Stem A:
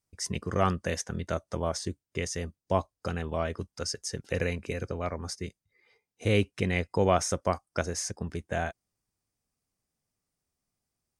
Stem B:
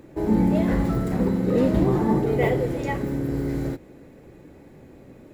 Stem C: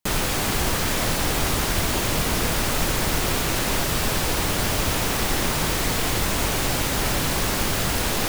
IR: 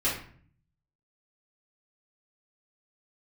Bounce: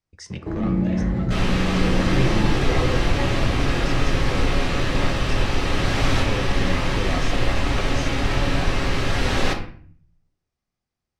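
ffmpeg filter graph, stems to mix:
-filter_complex "[0:a]asoftclip=type=hard:threshold=-22.5dB,volume=1.5dB,asplit=3[link_01][link_02][link_03];[link_02]volume=-20dB[link_04];[1:a]adelay=300,volume=1.5dB,asplit=2[link_05][link_06];[link_06]volume=-19dB[link_07];[2:a]adelay=1250,volume=-1.5dB,asplit=2[link_08][link_09];[link_09]volume=-8.5dB[link_10];[link_03]apad=whole_len=420361[link_11];[link_08][link_11]sidechaincompress=threshold=-47dB:ratio=8:attack=16:release=460[link_12];[link_01][link_05]amix=inputs=2:normalize=0,acrossover=split=210[link_13][link_14];[link_14]acompressor=threshold=-34dB:ratio=2[link_15];[link_13][link_15]amix=inputs=2:normalize=0,alimiter=limit=-18.5dB:level=0:latency=1:release=13,volume=0dB[link_16];[3:a]atrim=start_sample=2205[link_17];[link_04][link_07][link_10]amix=inputs=3:normalize=0[link_18];[link_18][link_17]afir=irnorm=-1:irlink=0[link_19];[link_12][link_16][link_19]amix=inputs=3:normalize=0,lowpass=4500"

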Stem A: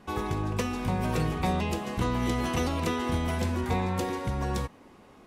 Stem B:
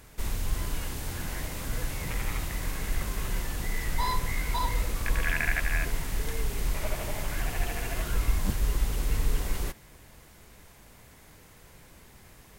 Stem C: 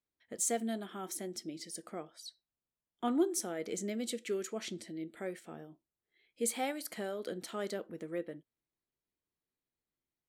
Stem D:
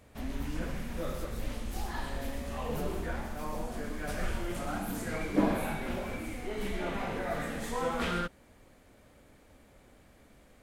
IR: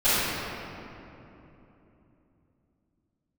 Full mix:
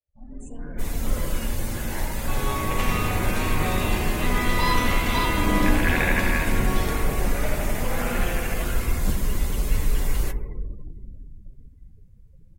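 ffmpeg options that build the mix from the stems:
-filter_complex "[0:a]equalizer=frequency=2800:width_type=o:width=2.6:gain=11,adelay=2200,volume=-17dB,asplit=2[link_01][link_02];[link_02]volume=-9dB[link_03];[1:a]highshelf=frequency=3400:gain=5,adelay=600,volume=-2.5dB,asplit=2[link_04][link_05];[link_05]volume=-23.5dB[link_06];[2:a]volume=-16.5dB,asplit=2[link_07][link_08];[link_08]volume=-16dB[link_09];[3:a]asplit=2[link_10][link_11];[link_11]afreqshift=2.7[link_12];[link_10][link_12]amix=inputs=2:normalize=1,volume=-10dB,asplit=2[link_13][link_14];[link_14]volume=-9.5dB[link_15];[4:a]atrim=start_sample=2205[link_16];[link_03][link_06][link_09][link_15]amix=inputs=4:normalize=0[link_17];[link_17][link_16]afir=irnorm=-1:irlink=0[link_18];[link_01][link_04][link_07][link_13][link_18]amix=inputs=5:normalize=0,afftdn=noise_reduction=34:noise_floor=-45,dynaudnorm=framelen=570:gausssize=3:maxgain=5dB"

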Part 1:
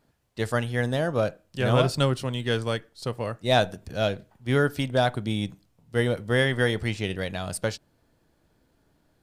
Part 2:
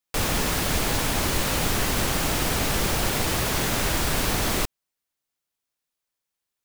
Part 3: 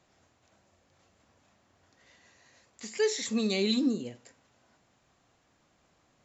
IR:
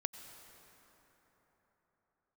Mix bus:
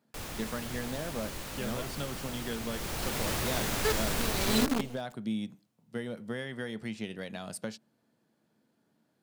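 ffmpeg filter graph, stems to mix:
-filter_complex "[0:a]acompressor=threshold=-27dB:ratio=6,highpass=frequency=130:width=0.5412,highpass=frequency=130:width=1.3066,equalizer=frequency=220:width=7.1:gain=11,volume=-7dB[link_01];[1:a]volume=-7.5dB,afade=type=in:start_time=2.69:duration=0.59:silence=0.375837[link_02];[2:a]highshelf=frequency=2900:gain=-3.5,aphaser=in_gain=1:out_gain=1:delay=4.9:decay=0.45:speed=0.37:type=sinusoidal,acrusher=bits=5:dc=4:mix=0:aa=0.000001,adelay=850,volume=-3.5dB[link_03];[link_01][link_02][link_03]amix=inputs=3:normalize=0"

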